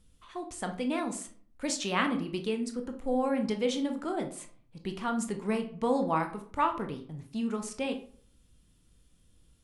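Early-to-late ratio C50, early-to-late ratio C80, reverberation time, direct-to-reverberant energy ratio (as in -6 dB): 10.5 dB, 16.0 dB, 0.50 s, 5.0 dB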